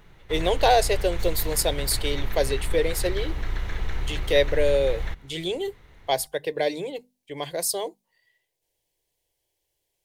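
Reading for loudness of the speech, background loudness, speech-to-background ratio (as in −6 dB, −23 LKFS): −25.5 LKFS, −33.5 LKFS, 8.0 dB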